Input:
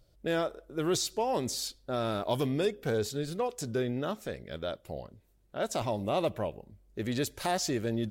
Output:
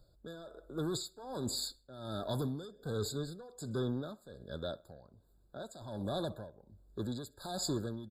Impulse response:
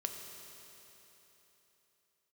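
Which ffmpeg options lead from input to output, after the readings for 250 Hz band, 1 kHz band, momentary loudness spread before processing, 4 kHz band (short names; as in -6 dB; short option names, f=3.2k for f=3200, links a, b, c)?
-6.0 dB, -12.0 dB, 9 LU, -5.0 dB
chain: -filter_complex "[0:a]aecho=1:1:63|126|189:0.0668|0.0314|0.0148,acrossover=split=240|2400[a][b][c];[b]asoftclip=type=tanh:threshold=-35dB[d];[a][d][c]amix=inputs=3:normalize=0,tremolo=f=1.3:d=0.8,afftfilt=real='re*eq(mod(floor(b*sr/1024/1700),2),0)':imag='im*eq(mod(floor(b*sr/1024/1700),2),0)':win_size=1024:overlap=0.75"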